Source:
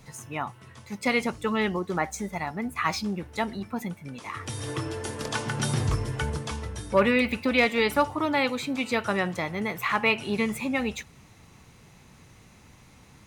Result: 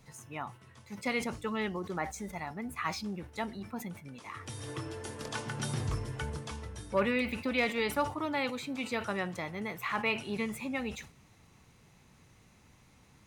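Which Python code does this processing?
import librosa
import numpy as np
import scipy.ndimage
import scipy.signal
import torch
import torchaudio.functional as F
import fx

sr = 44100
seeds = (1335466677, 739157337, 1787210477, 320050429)

y = fx.sustainer(x, sr, db_per_s=140.0)
y = F.gain(torch.from_numpy(y), -8.0).numpy()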